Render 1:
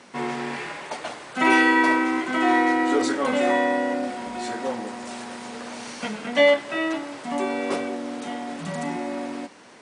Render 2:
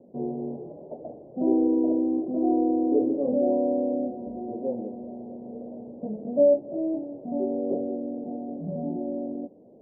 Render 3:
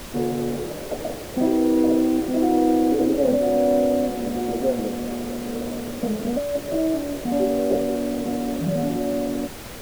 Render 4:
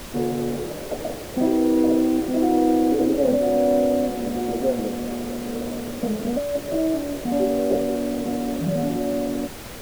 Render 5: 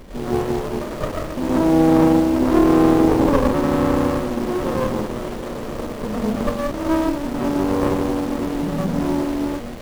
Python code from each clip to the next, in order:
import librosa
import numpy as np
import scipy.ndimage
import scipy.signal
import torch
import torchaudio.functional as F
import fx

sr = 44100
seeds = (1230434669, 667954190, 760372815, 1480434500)

y1 = scipy.signal.sosfilt(scipy.signal.butter(8, 640.0, 'lowpass', fs=sr, output='sos'), x)
y2 = fx.dynamic_eq(y1, sr, hz=290.0, q=1.0, threshold_db=-33.0, ratio=4.0, max_db=-5)
y2 = fx.over_compress(y2, sr, threshold_db=-27.0, ratio=-1.0)
y2 = fx.dmg_noise_colour(y2, sr, seeds[0], colour='pink', level_db=-46.0)
y2 = y2 * librosa.db_to_amplitude(8.5)
y3 = y2
y4 = fx.rev_freeverb(y3, sr, rt60_s=0.69, hf_ratio=0.95, predelay_ms=65, drr_db=-8.5)
y4 = fx.running_max(y4, sr, window=33)
y4 = y4 * librosa.db_to_amplitude(-3.5)